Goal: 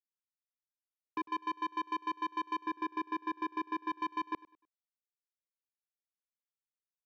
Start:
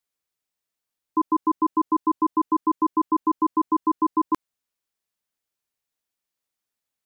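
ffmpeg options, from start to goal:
-filter_complex "[0:a]lowpass=f=1.1k:w=0.5412,lowpass=f=1.1k:w=1.3066,agate=range=-33dB:threshold=-31dB:ratio=3:detection=peak,asettb=1/sr,asplit=3[a][b][c];[a]atrim=end=1.244[d];[b]atrim=start=1.24:end=2.59,asetpts=PTS-STARTPTS,afade=t=in:d=0.004:c=qsin,afade=t=out:st=1.346:d=0.004:c=qsin,aemphasis=mode=production:type=riaa[e];[c]atrim=start=2.586[f];[d][e]acrossfade=d=0.004:c1=hsin:c2=qsin[g];[g][f]acrossfade=d=0.004:c1=qsin:c2=hsin,asplit=3[h][i][j];[h]afade=t=out:st=3.89:d=0.02[k];[i]aecho=1:1:1.1:0.33,afade=t=in:st=3.89:d=0.02,afade=t=out:st=4.31:d=0.02[l];[j]afade=t=in:st=4.31:d=0.02[m];[k][l][m]amix=inputs=3:normalize=0,acrossover=split=310[n][o];[n]acompressor=threshold=-39dB:ratio=6[p];[p][o]amix=inputs=2:normalize=0,alimiter=limit=-19.5dB:level=0:latency=1:release=271,asoftclip=type=tanh:threshold=-28.5dB,aecho=1:1:101|202|303:0.1|0.033|0.0109,volume=-1.5dB"

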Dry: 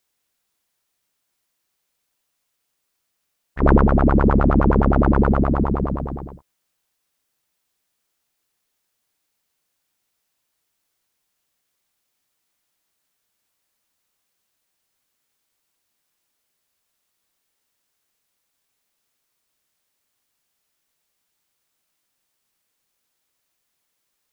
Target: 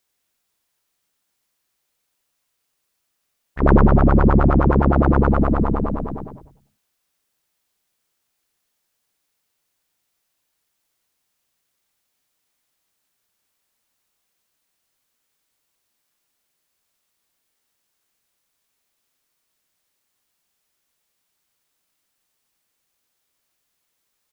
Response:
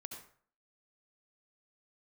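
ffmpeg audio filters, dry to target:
-filter_complex "[0:a]asplit=5[a][b][c][d][e];[b]adelay=95,afreqshift=-69,volume=-7dB[f];[c]adelay=190,afreqshift=-138,volume=-16.1dB[g];[d]adelay=285,afreqshift=-207,volume=-25.2dB[h];[e]adelay=380,afreqshift=-276,volume=-34.4dB[i];[a][f][g][h][i]amix=inputs=5:normalize=0"

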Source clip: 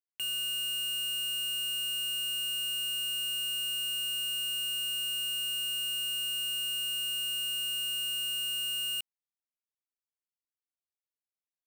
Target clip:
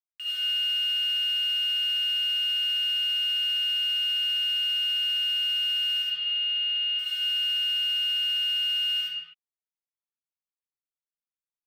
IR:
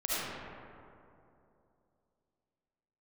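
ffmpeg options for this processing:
-filter_complex "[0:a]afwtdn=0.00891,asettb=1/sr,asplit=3[a][b][c];[a]atrim=end=6.024[d];[b]atrim=start=6.02:end=6.99,asetpts=PTS-STARTPTS,afade=t=in:d=0.004:c=qsin,afade=t=out:st=0.966:d=0.004:c=qsin,highpass=f=300:w=0.5412,highpass=f=300:w=1.3066,equalizer=f=460:t=q:w=4:g=7,equalizer=f=700:t=q:w=4:g=7,equalizer=f=1.5k:t=q:w=4:g=-7,lowpass=f=3.7k:w=0.5412,lowpass=f=3.7k:w=1.3066[e];[c]atrim=start=6.986[f];[d][e]acrossfade=d=0.004:c1=hsin:c2=qsin[g];[g][f]acrossfade=d=0.004:c1=qsin:c2=hsin[h];[1:a]atrim=start_sample=2205,afade=t=out:st=0.38:d=0.01,atrim=end_sample=17199[i];[h][i]afir=irnorm=-1:irlink=0"

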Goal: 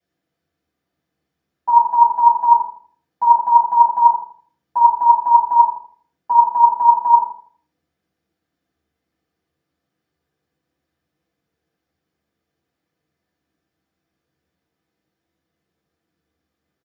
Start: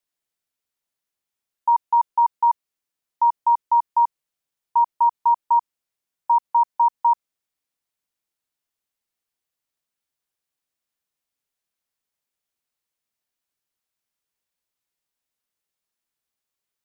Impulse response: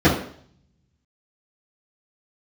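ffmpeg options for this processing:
-filter_complex "[0:a]asplit=2[a][b];[b]adelay=81,lowpass=f=1k:p=1,volume=-7dB,asplit=2[c][d];[d]adelay=81,lowpass=f=1k:p=1,volume=0.39,asplit=2[e][f];[f]adelay=81,lowpass=f=1k:p=1,volume=0.39,asplit=2[g][h];[h]adelay=81,lowpass=f=1k:p=1,volume=0.39,asplit=2[i][j];[j]adelay=81,lowpass=f=1k:p=1,volume=0.39[k];[a][c][e][g][i][k]amix=inputs=6:normalize=0[l];[1:a]atrim=start_sample=2205,afade=t=out:st=0.23:d=0.01,atrim=end_sample=10584[m];[l][m]afir=irnorm=-1:irlink=0,volume=-10.5dB"

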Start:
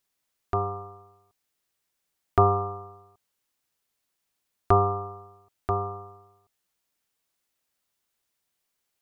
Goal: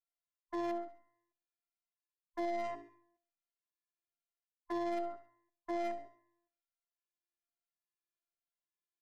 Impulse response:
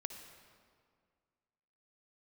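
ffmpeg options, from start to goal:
-filter_complex "[0:a]afftfilt=real='real(if(between(b,1,1008),(2*floor((b-1)/48)+1)*48-b,b),0)':imag='imag(if(between(b,1,1008),(2*floor((b-1)/48)+1)*48-b,b),0)*if(between(b,1,1008),-1,1)':win_size=2048:overlap=0.75,bandreject=f=50:t=h:w=6,bandreject=f=100:t=h:w=6,bandreject=f=150:t=h:w=6,afwtdn=0.0251,lowpass=f=2.3k:p=1,equalizer=f=1.5k:t=o:w=0.76:g=2.5,areverse,acompressor=threshold=-32dB:ratio=16,areverse,afftfilt=real='hypot(re,im)*cos(PI*b)':imag='0':win_size=512:overlap=0.75,aeval=exprs='0.0398*(cos(1*acos(clip(val(0)/0.0398,-1,1)))-cos(1*PI/2))+0.00355*(cos(2*acos(clip(val(0)/0.0398,-1,1)))-cos(2*PI/2))+0.000355*(cos(3*acos(clip(val(0)/0.0398,-1,1)))-cos(3*PI/2))+0.00316*(cos(5*acos(clip(val(0)/0.0398,-1,1)))-cos(5*PI/2))+0.00112*(cos(7*acos(clip(val(0)/0.0398,-1,1)))-cos(7*PI/2))':c=same,acontrast=43,asplit=2[a][b];[b]aecho=0:1:68|136|204|272:0.224|0.0895|0.0358|0.0143[c];[a][c]amix=inputs=2:normalize=0,asplit=2[d][e];[e]adelay=9.6,afreqshift=-1.2[f];[d][f]amix=inputs=2:normalize=1,volume=-2.5dB"

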